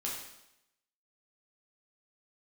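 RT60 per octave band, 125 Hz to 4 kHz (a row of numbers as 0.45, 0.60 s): 0.80, 0.85, 0.85, 0.85, 0.85, 0.85 s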